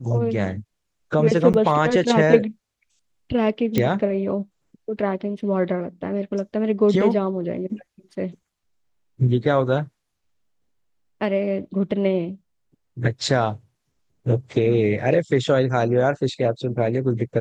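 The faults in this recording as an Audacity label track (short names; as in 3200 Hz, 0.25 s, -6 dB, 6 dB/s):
1.530000	1.540000	gap 9 ms
3.780000	3.780000	pop -7 dBFS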